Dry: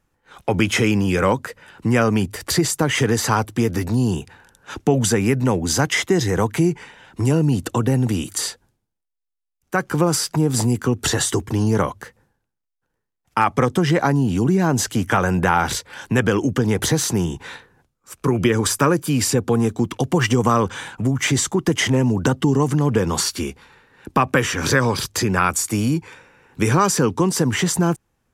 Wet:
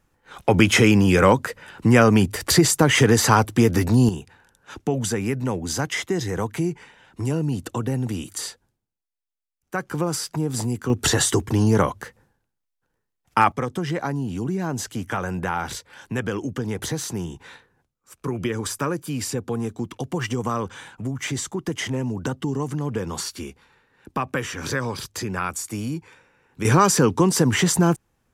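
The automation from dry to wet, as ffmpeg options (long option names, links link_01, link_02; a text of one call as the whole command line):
ffmpeg -i in.wav -af "asetnsamples=nb_out_samples=441:pad=0,asendcmd='4.09 volume volume -6.5dB;10.9 volume volume 0.5dB;13.52 volume volume -8.5dB;26.65 volume volume 0.5dB',volume=2.5dB" out.wav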